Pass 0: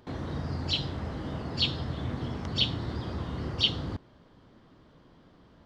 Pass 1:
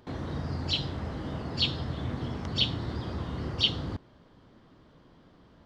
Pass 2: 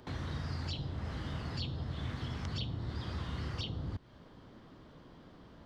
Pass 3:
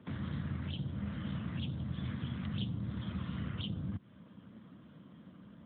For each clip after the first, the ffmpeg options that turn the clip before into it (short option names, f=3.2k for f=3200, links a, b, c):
-af anull
-filter_complex "[0:a]acrossover=split=150|1200[a][b][c];[a]acompressor=threshold=-39dB:ratio=4[d];[b]acompressor=threshold=-50dB:ratio=4[e];[c]acompressor=threshold=-48dB:ratio=4[f];[d][e][f]amix=inputs=3:normalize=0,volume=2dB"
-af "aeval=exprs='0.0562*(cos(1*acos(clip(val(0)/0.0562,-1,1)))-cos(1*PI/2))+0.00112*(cos(7*acos(clip(val(0)/0.0562,-1,1)))-cos(7*PI/2))':c=same,equalizer=f=200:t=o:w=0.33:g=10,equalizer=f=400:t=o:w=0.33:g=-9,equalizer=f=800:t=o:w=0.33:g=-11,volume=1dB" -ar 8000 -c:a libopencore_amrnb -b:a 12200